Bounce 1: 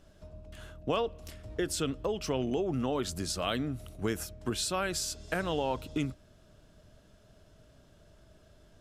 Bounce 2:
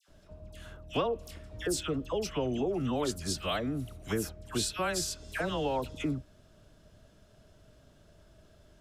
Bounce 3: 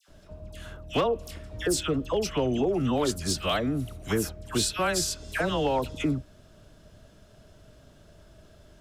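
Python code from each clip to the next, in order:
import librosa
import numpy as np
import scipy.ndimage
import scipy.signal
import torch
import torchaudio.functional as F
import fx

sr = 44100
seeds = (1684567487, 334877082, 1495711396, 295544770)

y1 = fx.dispersion(x, sr, late='lows', ms=86.0, hz=1400.0)
y2 = np.clip(10.0 ** (23.0 / 20.0) * y1, -1.0, 1.0) / 10.0 ** (23.0 / 20.0)
y2 = F.gain(torch.from_numpy(y2), 5.5).numpy()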